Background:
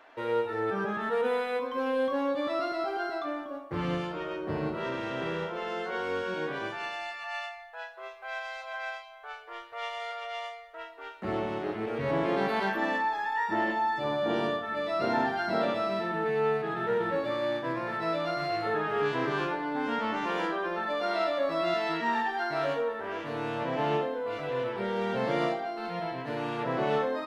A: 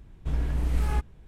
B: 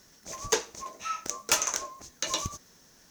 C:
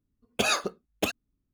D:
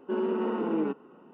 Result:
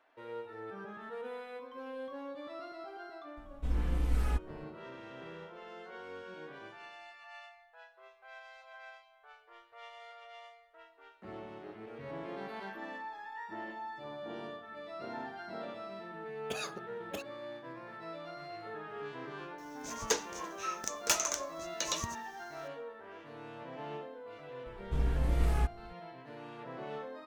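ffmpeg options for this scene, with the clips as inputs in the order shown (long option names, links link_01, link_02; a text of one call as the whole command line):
ffmpeg -i bed.wav -i cue0.wav -i cue1.wav -i cue2.wav -filter_complex "[1:a]asplit=2[link_01][link_02];[0:a]volume=-14.5dB[link_03];[link_01]aecho=1:1:4:0.94,atrim=end=1.27,asetpts=PTS-STARTPTS,volume=-8dB,afade=type=in:duration=0.004:curve=hsin,afade=type=out:start_time=1.266:duration=0.004:curve=hsin,adelay=148617S[link_04];[3:a]atrim=end=1.53,asetpts=PTS-STARTPTS,volume=-15dB,afade=type=in:duration=0.004:curve=hsin,afade=type=out:start_time=1.526:duration=0.004:curve=hsin,adelay=16110[link_05];[2:a]atrim=end=3.1,asetpts=PTS-STARTPTS,volume=-4.5dB,afade=type=in:duration=0.004:curve=hsin,afade=type=out:start_time=3.096:duration=0.004:curve=hsin,adelay=19580[link_06];[link_02]atrim=end=1.27,asetpts=PTS-STARTPTS,volume=-3.5dB,afade=type=in:duration=0.004:curve=hsin,afade=type=out:start_time=1.266:duration=0.004:curve=hsin,adelay=24660[link_07];[link_03][link_04][link_05][link_06][link_07]amix=inputs=5:normalize=0" out.wav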